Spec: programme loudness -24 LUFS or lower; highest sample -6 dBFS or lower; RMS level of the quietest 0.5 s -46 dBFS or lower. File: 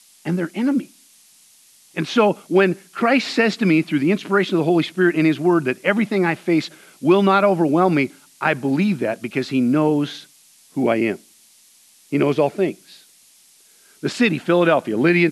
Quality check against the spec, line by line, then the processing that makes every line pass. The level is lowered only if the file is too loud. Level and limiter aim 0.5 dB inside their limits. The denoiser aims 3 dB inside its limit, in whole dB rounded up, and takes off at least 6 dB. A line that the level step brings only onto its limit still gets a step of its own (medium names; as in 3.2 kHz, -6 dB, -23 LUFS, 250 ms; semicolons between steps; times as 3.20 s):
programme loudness -19.0 LUFS: fail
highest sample -3.5 dBFS: fail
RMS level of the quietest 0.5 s -53 dBFS: pass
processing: trim -5.5 dB